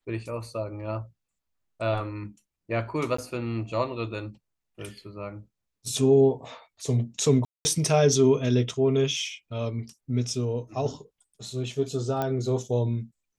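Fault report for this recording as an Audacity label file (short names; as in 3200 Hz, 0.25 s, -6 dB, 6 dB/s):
3.170000	3.180000	gap 14 ms
7.450000	7.650000	gap 0.2 s
12.220000	12.220000	pop -15 dBFS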